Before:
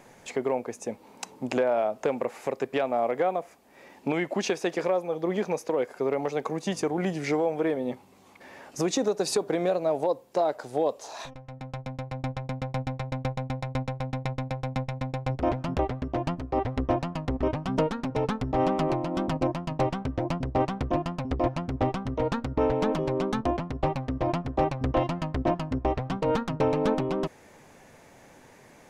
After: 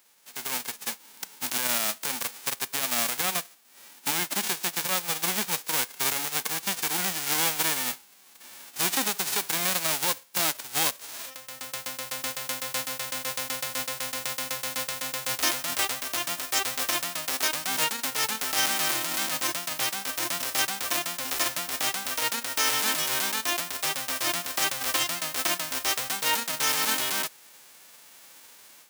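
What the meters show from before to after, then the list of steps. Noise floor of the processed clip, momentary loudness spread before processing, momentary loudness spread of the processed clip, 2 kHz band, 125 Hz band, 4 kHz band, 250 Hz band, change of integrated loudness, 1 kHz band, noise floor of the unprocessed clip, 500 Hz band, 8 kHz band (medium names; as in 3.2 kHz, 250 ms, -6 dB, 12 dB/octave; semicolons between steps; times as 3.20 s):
-53 dBFS, 8 LU, 7 LU, +9.0 dB, -15.5 dB, +14.5 dB, -12.0 dB, +2.5 dB, -2.0 dB, -54 dBFS, -12.5 dB, +17.0 dB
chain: formants flattened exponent 0.1; high-pass 460 Hz 6 dB/octave; peak limiter -14 dBFS, peak gain reduction 9.5 dB; level rider gain up to 11.5 dB; trim -9 dB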